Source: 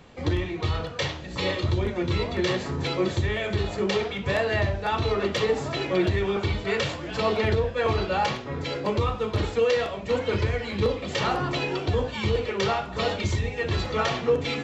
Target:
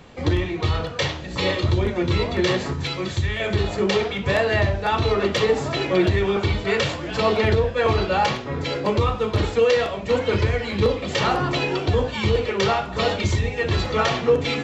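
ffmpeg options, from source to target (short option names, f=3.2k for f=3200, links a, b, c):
-filter_complex "[0:a]asettb=1/sr,asplit=3[a][b][c];[a]atrim=end=2.734[d];[b]atrim=start=2.73:end=3.4,asetpts=PTS-STARTPTS,afade=t=in:d=0.004:c=qsin,afade=t=out:st=0.666:d=0.004:c=qsin,equalizer=f=470:w=0.49:g=-9.5[e];[c]atrim=start=3.396[f];[d][e]acrossfade=d=0.004:c1=hsin:c2=qsin[g];[g][f]acrossfade=d=0.004:c1=qsin:c2=hsin,volume=4.5dB"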